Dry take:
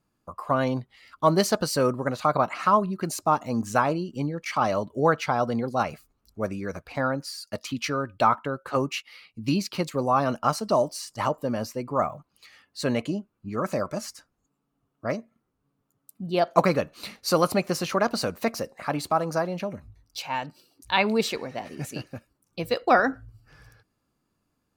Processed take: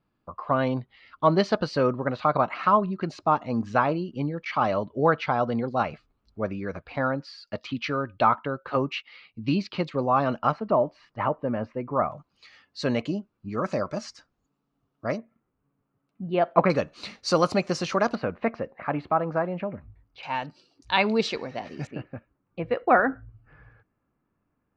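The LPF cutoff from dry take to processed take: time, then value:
LPF 24 dB/oct
4000 Hz
from 10.52 s 2400 Hz
from 12.12 s 5700 Hz
from 15.18 s 2700 Hz
from 16.7 s 6600 Hz
from 18.15 s 2500 Hz
from 20.23 s 5600 Hz
from 21.87 s 2300 Hz

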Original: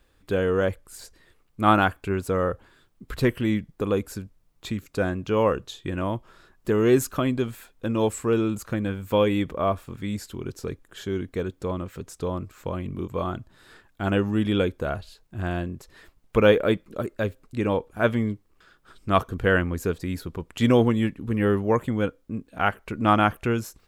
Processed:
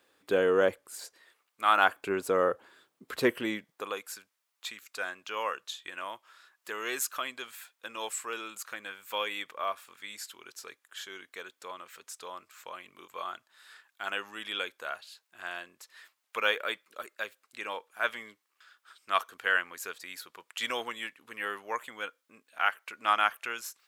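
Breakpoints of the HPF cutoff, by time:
0.85 s 340 Hz
1.69 s 1300 Hz
1.98 s 370 Hz
3.34 s 370 Hz
4.06 s 1300 Hz

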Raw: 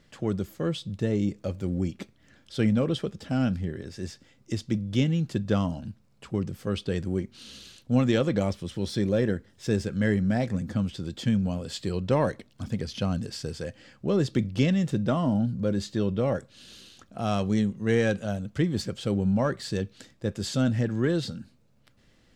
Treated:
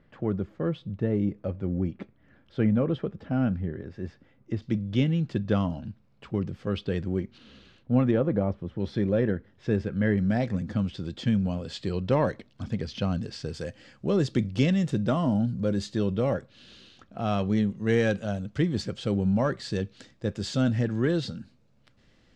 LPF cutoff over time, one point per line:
1800 Hz
from 4.62 s 3600 Hz
from 7.38 s 2000 Hz
from 8.11 s 1200 Hz
from 8.8 s 2400 Hz
from 10.18 s 4800 Hz
from 13.54 s 8400 Hz
from 16.34 s 3800 Hz
from 17.7 s 6200 Hz

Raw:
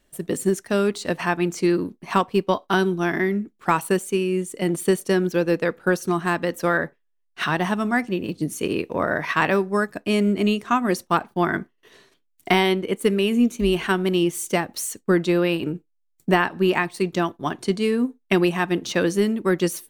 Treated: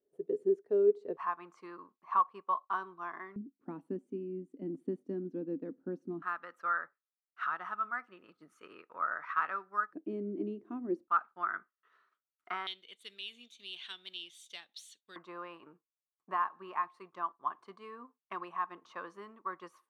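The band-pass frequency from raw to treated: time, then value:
band-pass, Q 11
420 Hz
from 1.17 s 1100 Hz
from 3.36 s 270 Hz
from 6.22 s 1300 Hz
from 9.93 s 320 Hz
from 11.08 s 1300 Hz
from 12.67 s 3600 Hz
from 15.16 s 1100 Hz

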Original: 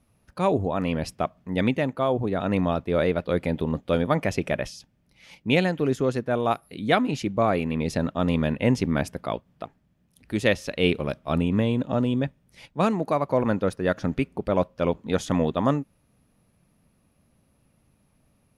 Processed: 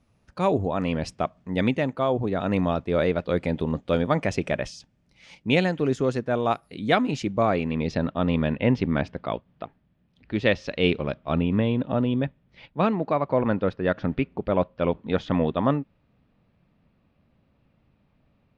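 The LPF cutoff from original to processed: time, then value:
LPF 24 dB/oct
7.27 s 8300 Hz
8.2 s 4100 Hz
10.36 s 4100 Hz
10.88 s 6500 Hz
11.15 s 3900 Hz

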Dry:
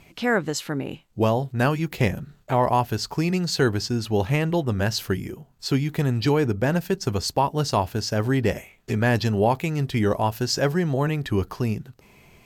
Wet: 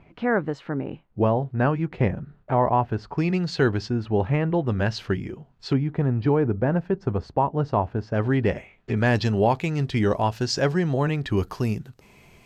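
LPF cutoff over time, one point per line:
1600 Hz
from 3.18 s 3300 Hz
from 3.9 s 1800 Hz
from 4.65 s 3300 Hz
from 5.73 s 1300 Hz
from 8.14 s 2800 Hz
from 8.97 s 6100 Hz
from 11.37 s 12000 Hz

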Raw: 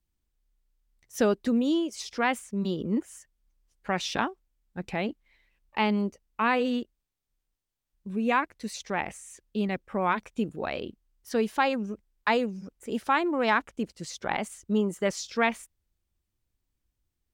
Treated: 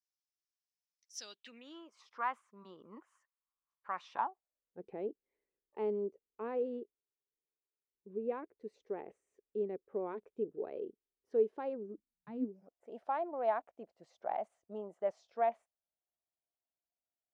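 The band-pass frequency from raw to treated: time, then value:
band-pass, Q 5.5
1.17 s 5400 Hz
1.88 s 1100 Hz
4.07 s 1100 Hz
4.83 s 420 Hz
11.82 s 420 Hz
12.32 s 140 Hz
12.6 s 680 Hz

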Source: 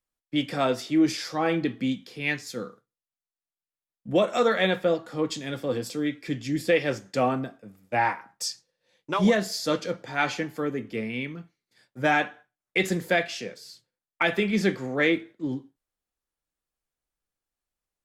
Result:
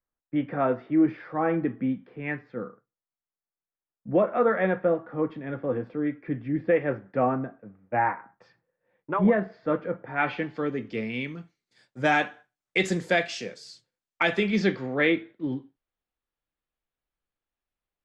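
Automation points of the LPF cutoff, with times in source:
LPF 24 dB/oct
10.05 s 1800 Hz
10.53 s 4200 Hz
11.35 s 8600 Hz
14.25 s 8600 Hz
14.97 s 3700 Hz

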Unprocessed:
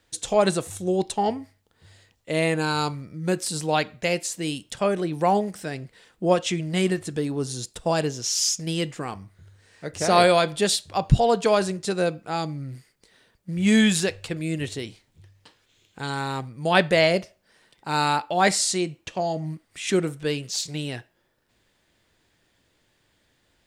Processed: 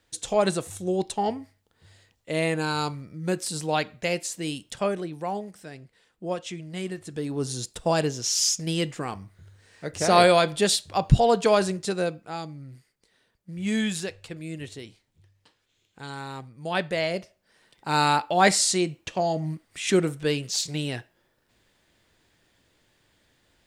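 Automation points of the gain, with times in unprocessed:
4.84 s -2.5 dB
5.24 s -10 dB
6.92 s -10 dB
7.46 s 0 dB
11.75 s 0 dB
12.49 s -8 dB
17.05 s -8 dB
17.91 s +1 dB

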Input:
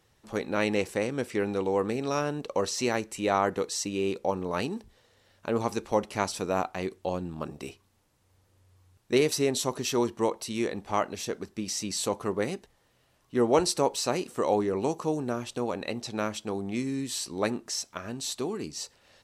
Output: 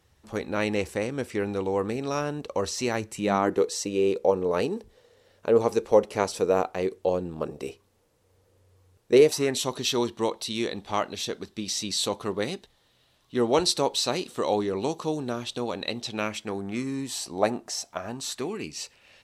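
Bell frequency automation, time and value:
bell +11 dB 0.61 oct
2.9 s 73 Hz
3.68 s 470 Hz
9.22 s 470 Hz
9.67 s 3700 Hz
15.98 s 3700 Hz
17.24 s 710 Hz
18.04 s 710 Hz
18.51 s 2500 Hz

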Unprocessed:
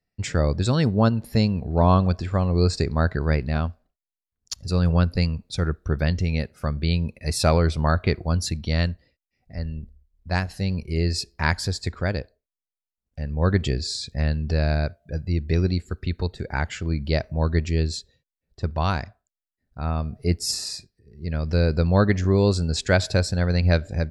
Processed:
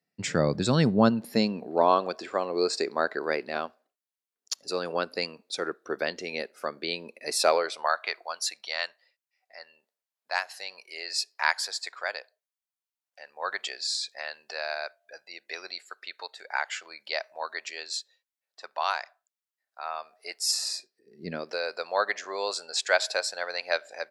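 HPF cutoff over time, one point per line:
HPF 24 dB/oct
0.98 s 150 Hz
1.92 s 340 Hz
7.32 s 340 Hz
7.98 s 710 Hz
20.51 s 710 Hz
21.29 s 190 Hz
21.59 s 610 Hz

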